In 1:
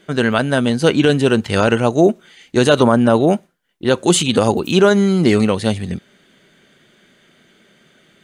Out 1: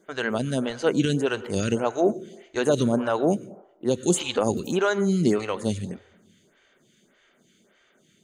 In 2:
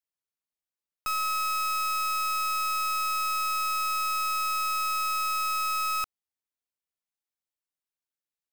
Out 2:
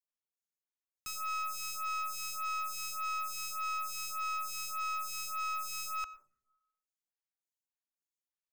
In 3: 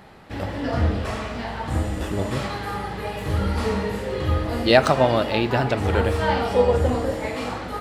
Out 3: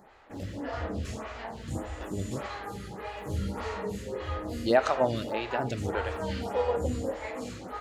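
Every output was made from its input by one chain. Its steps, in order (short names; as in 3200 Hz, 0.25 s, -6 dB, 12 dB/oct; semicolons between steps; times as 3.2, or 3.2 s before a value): bell 6700 Hz +9.5 dB 0.29 oct; plate-style reverb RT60 0.87 s, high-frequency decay 0.35×, pre-delay 85 ms, DRR 16 dB; photocell phaser 1.7 Hz; gain -6.5 dB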